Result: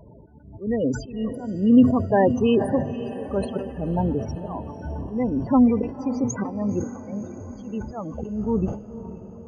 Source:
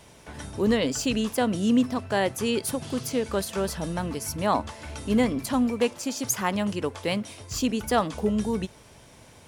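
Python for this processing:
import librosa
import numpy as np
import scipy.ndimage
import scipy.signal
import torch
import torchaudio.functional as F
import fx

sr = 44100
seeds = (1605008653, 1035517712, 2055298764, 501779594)

p1 = fx.lowpass(x, sr, hz=1200.0, slope=6)
p2 = fx.auto_swell(p1, sr, attack_ms=426.0)
p3 = fx.spec_topn(p2, sr, count=16)
p4 = p3 + fx.echo_diffused(p3, sr, ms=528, feedback_pct=56, wet_db=-13.0, dry=0)
p5 = fx.sustainer(p4, sr, db_per_s=110.0)
y = p5 * 10.0 ** (8.0 / 20.0)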